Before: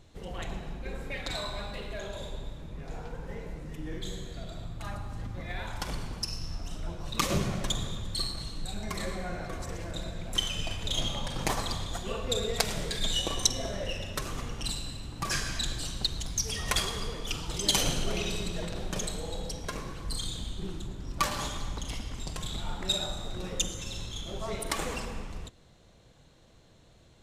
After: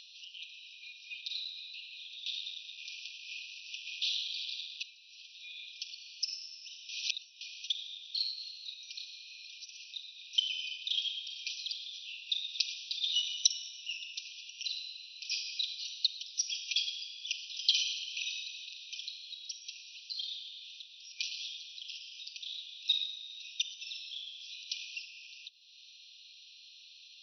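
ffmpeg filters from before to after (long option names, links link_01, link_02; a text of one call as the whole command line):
ffmpeg -i in.wav -filter_complex "[0:a]asettb=1/sr,asplit=3[link_01][link_02][link_03];[link_01]atrim=end=2.264[link_04];[link_02]atrim=start=2.26:end=4.83,asetpts=PTS-STARTPTS,afade=type=in:duration=0.004:curve=qsin,afade=type=out:start_time=2.566:duration=0.004:curve=qsin,aeval=exprs='0.0668*sin(PI/2*5.01*val(0)/0.0668)':channel_layout=same[link_05];[link_03]atrim=start=4.826[link_06];[link_04][link_05]acrossfade=duration=0.004:curve1=hsin:curve2=qsin[link_07];[link_07][link_06]acrossfade=duration=0.004:curve1=qsin:curve2=hsin,asplit=3[link_08][link_09][link_10];[link_08]atrim=end=6.892[link_11];[link_09]atrim=start=6.888:end=7.412,asetpts=PTS-STARTPTS,areverse[link_12];[link_10]atrim=start=7.408[link_13];[link_11][link_12]acrossfade=duration=0.004:curve1=hsin:curve2=hsin[link_14];[link_14][link_13]acrossfade=duration=0.004:curve1=hsin:curve2=hsin,afftfilt=real='re*between(b*sr/4096,2400,6000)':imag='im*between(b*sr/4096,2400,6000)':win_size=4096:overlap=0.75,acompressor=mode=upward:threshold=-41dB:ratio=2.5" out.wav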